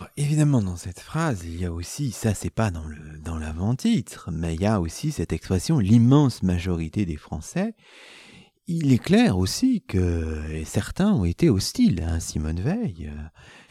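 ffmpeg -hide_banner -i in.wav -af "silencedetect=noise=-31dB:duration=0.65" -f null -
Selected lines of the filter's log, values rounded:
silence_start: 7.70
silence_end: 8.69 | silence_duration: 0.98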